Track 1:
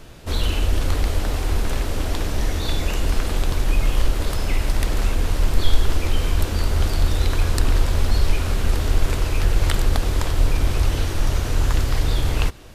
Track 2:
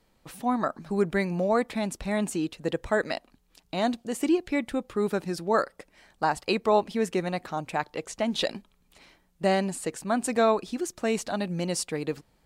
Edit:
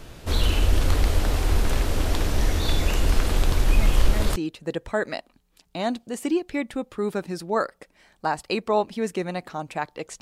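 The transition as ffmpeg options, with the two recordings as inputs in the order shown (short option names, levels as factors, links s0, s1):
-filter_complex "[1:a]asplit=2[s0][s1];[0:a]apad=whole_dur=10.21,atrim=end=10.21,atrim=end=4.362[s2];[s1]atrim=start=2.338:end=8.19[s3];[s0]atrim=start=1.76:end=2.34,asetpts=PTS-STARTPTS,volume=0.447,afade=t=in:d=0.004:c=hsin,afade=t=out:st=0.576:d=0.004:c=hsin,adelay=3780[s4];[s2][s3]acrossfade=d=0.004:c1=hsin:c2=hsin[s5];[s5][s4]amix=inputs=2:normalize=0"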